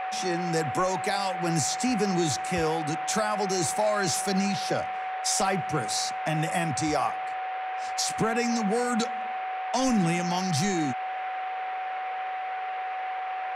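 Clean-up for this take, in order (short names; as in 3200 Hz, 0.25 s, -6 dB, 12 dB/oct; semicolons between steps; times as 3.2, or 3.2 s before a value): notch 750 Hz, Q 30; noise print and reduce 30 dB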